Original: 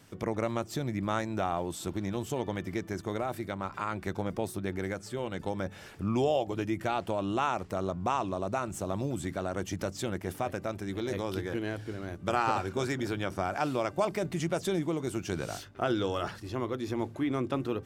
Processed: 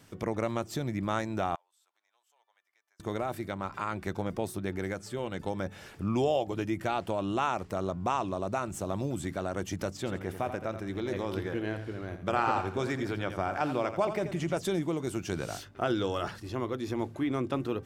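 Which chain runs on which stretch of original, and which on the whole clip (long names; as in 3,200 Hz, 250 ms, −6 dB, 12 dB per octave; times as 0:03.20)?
0:01.55–0:03.00: high-pass filter 790 Hz 24 dB per octave + gate with flip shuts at −40 dBFS, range −29 dB
0:09.97–0:14.57: bass and treble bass −1 dB, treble −7 dB + repeating echo 84 ms, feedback 28%, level −10 dB
whole clip: no processing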